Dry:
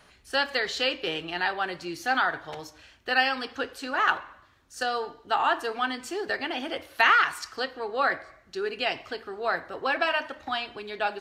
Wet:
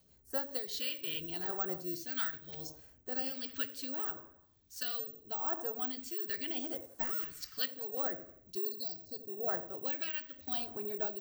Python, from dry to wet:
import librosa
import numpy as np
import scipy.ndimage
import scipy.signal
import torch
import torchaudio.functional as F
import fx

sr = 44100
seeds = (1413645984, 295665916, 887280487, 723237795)

y = fx.cvsd(x, sr, bps=64000, at=(6.59, 7.25))
y = fx.echo_wet_lowpass(y, sr, ms=84, feedback_pct=39, hz=630.0, wet_db=-8.5)
y = fx.rotary_switch(y, sr, hz=5.0, then_hz=1.0, switch_at_s=1.76)
y = fx.rider(y, sr, range_db=4, speed_s=0.5)
y = fx.peak_eq(y, sr, hz=1300.0, db=6.5, octaves=0.28, at=(1.48, 1.97))
y = fx.brickwall_bandstop(y, sr, low_hz=810.0, high_hz=3900.0, at=(8.57, 9.47), fade=0.02)
y = (np.kron(scipy.signal.resample_poly(y, 1, 2), np.eye(2)[0]) * 2)[:len(y)]
y = fx.phaser_stages(y, sr, stages=2, low_hz=670.0, high_hz=2700.0, hz=0.76, feedback_pct=45)
y = y * librosa.db_to_amplitude(-6.5)